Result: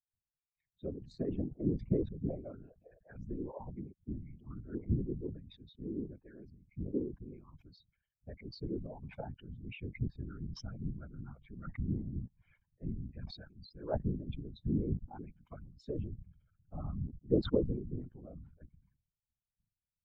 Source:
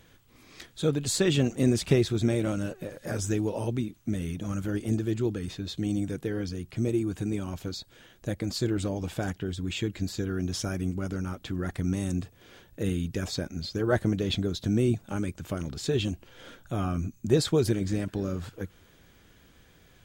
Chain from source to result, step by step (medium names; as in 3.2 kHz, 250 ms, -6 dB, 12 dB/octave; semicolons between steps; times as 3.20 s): expander on every frequency bin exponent 3; treble shelf 3.9 kHz -11 dB; gain riding within 5 dB 2 s; whisper effect; low-pass that closes with the level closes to 670 Hz, closed at -35.5 dBFS; tape spacing loss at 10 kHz 32 dB; decay stretcher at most 93 dB/s; trim -1 dB